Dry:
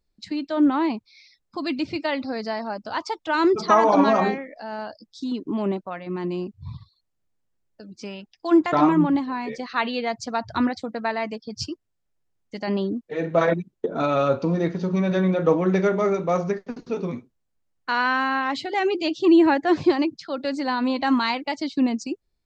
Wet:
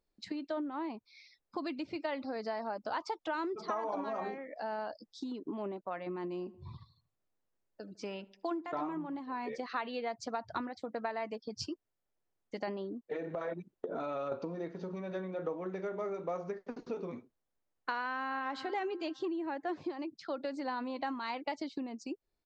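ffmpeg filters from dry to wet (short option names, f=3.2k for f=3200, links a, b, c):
-filter_complex "[0:a]asplit=3[a][b][c];[a]afade=t=out:st=6.43:d=0.02[d];[b]asplit=2[e][f];[f]adelay=77,lowpass=f=2.1k:p=1,volume=-21dB,asplit=2[g][h];[h]adelay=77,lowpass=f=2.1k:p=1,volume=0.52,asplit=2[i][j];[j]adelay=77,lowpass=f=2.1k:p=1,volume=0.52,asplit=2[k][l];[l]adelay=77,lowpass=f=2.1k:p=1,volume=0.52[m];[e][g][i][k][m]amix=inputs=5:normalize=0,afade=t=in:st=6.43:d=0.02,afade=t=out:st=9.19:d=0.02[n];[c]afade=t=in:st=9.19:d=0.02[o];[d][n][o]amix=inputs=3:normalize=0,asettb=1/sr,asplit=3[p][q][r];[p]atrim=end=13.164[s];[q]atrim=start=13.16:end=14.32,asetpts=PTS-STARTPTS,afade=t=in:d=0.004:c=qsin,afade=t=out:st=1.156:d=0.004:c=qsin,acompressor=threshold=-28dB:ratio=6:attack=3.2:release=140:knee=1:detection=peak[t];[r]atrim=start=14.316[u];[s][t]acrossfade=d=0.004:c1=hsin:c2=qsin[v];[v][u]acrossfade=d=0.004:c1=qsin:c2=hsin,asplit=2[w][x];[x]afade=t=in:st=18.07:d=0.01,afade=t=out:st=18.47:d=0.01,aecho=0:1:230|460|690|920|1150:0.133352|0.0733437|0.040339|0.0221865|0.0122026[y];[w][y]amix=inputs=2:normalize=0,highshelf=f=2.2k:g=-10,acompressor=threshold=-32dB:ratio=12,bass=f=250:g=-11,treble=f=4k:g=1"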